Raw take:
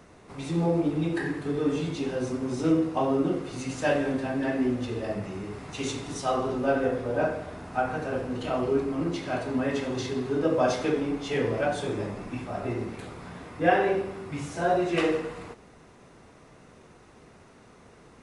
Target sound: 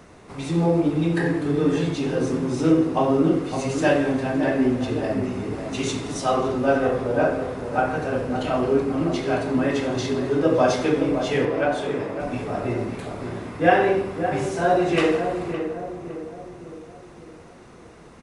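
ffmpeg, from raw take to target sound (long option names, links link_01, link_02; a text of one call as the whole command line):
ffmpeg -i in.wav -filter_complex "[0:a]asettb=1/sr,asplit=3[link_01][link_02][link_03];[link_01]atrim=end=11.454[link_04];[link_02]atrim=start=11.45:end=12.2,asetpts=PTS-STARTPTS,afade=type=in:duration=0.004:curve=qsin,afade=type=out:start_time=0.746:duration=0.004:curve=qsin,bass=frequency=250:gain=-14,treble=frequency=4000:gain=-7[link_05];[link_03]atrim=start=12.196[link_06];[link_04][link_05]acrossfade=duration=0.004:curve1=hsin:curve2=qsin[link_07];[link_07][link_06]acrossfade=duration=0.004:curve1=qsin:curve2=hsin,asplit=2[link_08][link_09];[link_09]adelay=562,lowpass=frequency=1100:poles=1,volume=-7dB,asplit=2[link_10][link_11];[link_11]adelay=562,lowpass=frequency=1100:poles=1,volume=0.52,asplit=2[link_12][link_13];[link_13]adelay=562,lowpass=frequency=1100:poles=1,volume=0.52,asplit=2[link_14][link_15];[link_15]adelay=562,lowpass=frequency=1100:poles=1,volume=0.52,asplit=2[link_16][link_17];[link_17]adelay=562,lowpass=frequency=1100:poles=1,volume=0.52,asplit=2[link_18][link_19];[link_19]adelay=562,lowpass=frequency=1100:poles=1,volume=0.52[link_20];[link_08][link_10][link_12][link_14][link_16][link_18][link_20]amix=inputs=7:normalize=0,volume=5dB" out.wav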